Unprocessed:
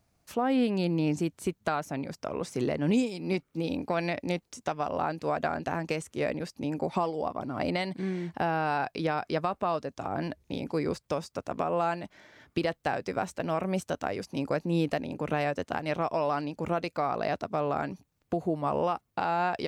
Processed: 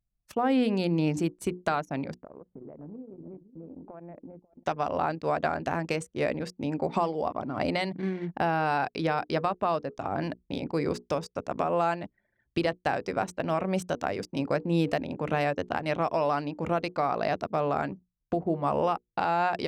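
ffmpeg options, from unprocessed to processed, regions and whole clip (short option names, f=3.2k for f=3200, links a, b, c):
-filter_complex "[0:a]asettb=1/sr,asplit=3[a][b][c];[a]atrim=end=2.144[d];[b]atrim=start=2.14:end=4.64,asetpts=PTS-STARTPTS,afade=t=in:d=0.004:c=qsin,afade=t=out:st=2.496:d=0.004:c=qsin,lowpass=1.2k,acompressor=threshold=-43dB:ratio=5:attack=3.2:release=140:knee=1:detection=peak,aecho=1:1:543:0.335,atrim=end_sample=110250[e];[c]atrim=start=4.636[f];[d][e]acrossfade=d=0.004:c1=hsin:c2=qsin[g];[g][f]acrossfade=d=0.004:c1=qsin:c2=hsin,bandreject=f=60:t=h:w=6,bandreject=f=120:t=h:w=6,bandreject=f=180:t=h:w=6,bandreject=f=240:t=h:w=6,bandreject=f=300:t=h:w=6,bandreject=f=360:t=h:w=6,bandreject=f=420:t=h:w=6,bandreject=f=480:t=h:w=6,anlmdn=0.1,volume=2dB"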